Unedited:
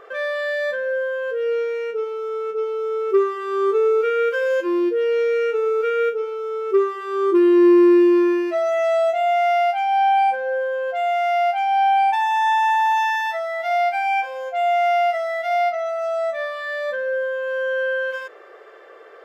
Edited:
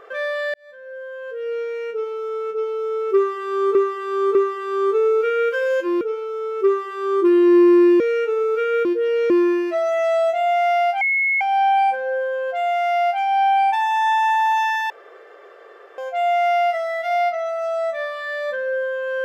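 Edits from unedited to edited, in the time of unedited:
0:00.54–0:02.11: fade in
0:03.15–0:03.75: repeat, 3 plays
0:04.81–0:05.26: swap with 0:06.11–0:08.10
0:09.81: insert tone 2,180 Hz −16 dBFS 0.40 s
0:13.30–0:14.38: fill with room tone

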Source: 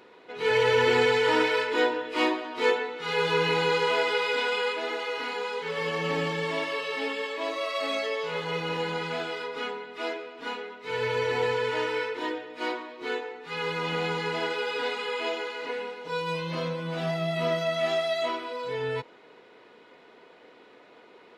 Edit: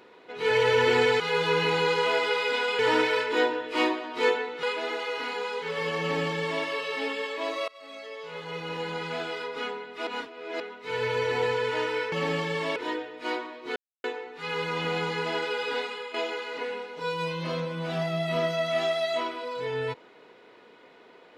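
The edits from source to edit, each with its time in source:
0:03.04–0:04.63: move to 0:01.20
0:06.00–0:06.64: duplicate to 0:12.12
0:07.68–0:09.36: fade in, from −23.5 dB
0:10.07–0:10.60: reverse
0:13.12: splice in silence 0.28 s
0:14.83–0:15.22: fade out, to −10.5 dB

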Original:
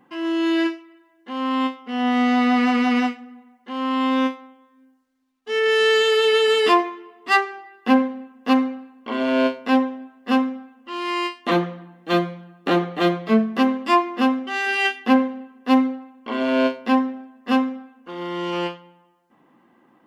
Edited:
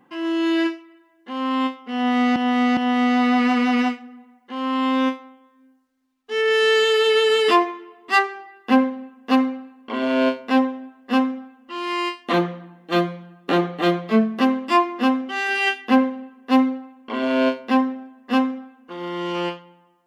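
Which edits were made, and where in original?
0:01.95–0:02.36: repeat, 3 plays

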